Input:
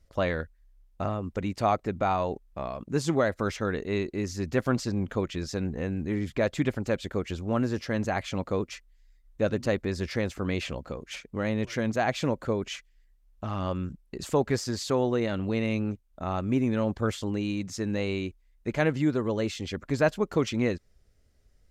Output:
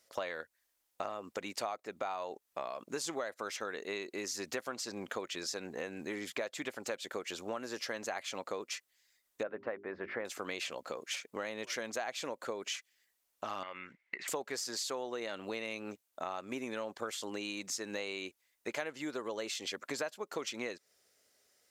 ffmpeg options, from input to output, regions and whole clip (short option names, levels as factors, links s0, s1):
-filter_complex "[0:a]asettb=1/sr,asplit=3[s0][s1][s2];[s0]atrim=end=9.434[s3];[s1]atrim=start=9.43:end=10.25,asetpts=PTS-STARTPTS,afade=t=in:d=0.004:c=qsin,afade=t=out:st=0.816:d=0.004:c=qsin,lowpass=f=1900:w=0.5412,lowpass=f=1900:w=1.3066,bandreject=f=50:t=h:w=6,bandreject=f=100:t=h:w=6,bandreject=f=150:t=h:w=6,bandreject=f=200:t=h:w=6,bandreject=f=250:t=h:w=6,bandreject=f=300:t=h:w=6,bandreject=f=350:t=h:w=6,bandreject=f=400:t=h:w=6[s4];[s2]atrim=start=10.246[s5];[s3][s4]acrossfade=d=0.004:c1=hsin:c2=qsin[s6];[s6][s5]acrossfade=d=0.004:c1=qsin:c2=hsin,asettb=1/sr,asplit=3[s7][s8][s9];[s7]atrim=end=13.634[s10];[s8]atrim=start=13.63:end=14.28,asetpts=PTS-STARTPTS,afade=t=in:d=0.004:c=qsin,afade=t=out:st=0.646:d=0.004:c=qsin,tiltshelf=f=1400:g=-5,acompressor=threshold=0.0126:ratio=6:attack=3.2:release=140:knee=1:detection=peak,lowpass=f=2100:t=q:w=14[s11];[s9]atrim=start=14.276[s12];[s10][s11]acrossfade=d=0.004:c1=hsin:c2=qsin[s13];[s13][s12]acrossfade=d=0.004:c1=qsin:c2=hsin,highpass=500,highshelf=f=4400:g=8.5,acompressor=threshold=0.0126:ratio=6,volume=1.33"